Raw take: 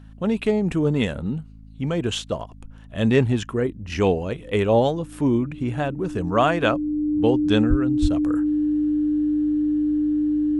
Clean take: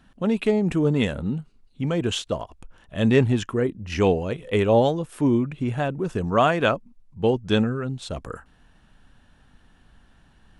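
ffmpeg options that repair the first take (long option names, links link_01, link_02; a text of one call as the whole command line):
ffmpeg -i in.wav -filter_complex "[0:a]bandreject=frequency=53.4:width_type=h:width=4,bandreject=frequency=106.8:width_type=h:width=4,bandreject=frequency=160.2:width_type=h:width=4,bandreject=frequency=213.6:width_type=h:width=4,bandreject=frequency=267:width_type=h:width=4,bandreject=frequency=300:width=30,asplit=3[link_01][link_02][link_03];[link_01]afade=type=out:start_time=7.69:duration=0.02[link_04];[link_02]highpass=frequency=140:width=0.5412,highpass=frequency=140:width=1.3066,afade=type=in:start_time=7.69:duration=0.02,afade=type=out:start_time=7.81:duration=0.02[link_05];[link_03]afade=type=in:start_time=7.81:duration=0.02[link_06];[link_04][link_05][link_06]amix=inputs=3:normalize=0,asplit=3[link_07][link_08][link_09];[link_07]afade=type=out:start_time=8.01:duration=0.02[link_10];[link_08]highpass=frequency=140:width=0.5412,highpass=frequency=140:width=1.3066,afade=type=in:start_time=8.01:duration=0.02,afade=type=out:start_time=8.13:duration=0.02[link_11];[link_09]afade=type=in:start_time=8.13:duration=0.02[link_12];[link_10][link_11][link_12]amix=inputs=3:normalize=0" out.wav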